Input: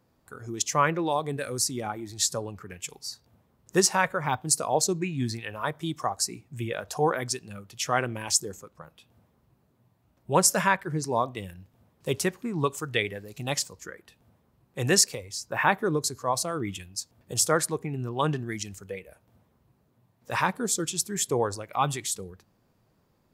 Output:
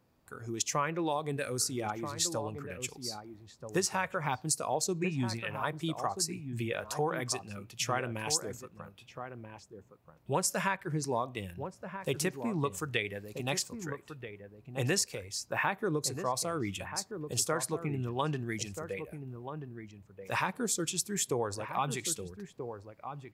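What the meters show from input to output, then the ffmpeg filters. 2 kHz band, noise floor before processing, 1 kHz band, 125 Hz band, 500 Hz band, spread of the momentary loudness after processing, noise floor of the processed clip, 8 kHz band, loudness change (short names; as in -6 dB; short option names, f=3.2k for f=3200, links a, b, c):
-6.0 dB, -68 dBFS, -6.5 dB, -4.0 dB, -5.5 dB, 14 LU, -61 dBFS, -6.5 dB, -6.5 dB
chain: -filter_complex "[0:a]equalizer=f=2.5k:t=o:w=0.34:g=3.5,acompressor=threshold=-25dB:ratio=4,asplit=2[a][b];[b]adelay=1283,volume=-8dB,highshelf=f=4k:g=-28.9[c];[a][c]amix=inputs=2:normalize=0,volume=-2.5dB"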